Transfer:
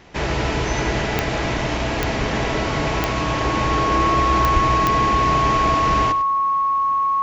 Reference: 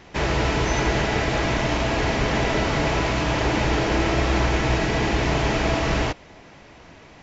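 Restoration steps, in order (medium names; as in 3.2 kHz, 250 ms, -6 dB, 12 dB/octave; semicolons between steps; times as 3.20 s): de-click; band-stop 1.1 kHz, Q 30; 4.53–4.65 s: high-pass 140 Hz 24 dB/octave; inverse comb 99 ms -13.5 dB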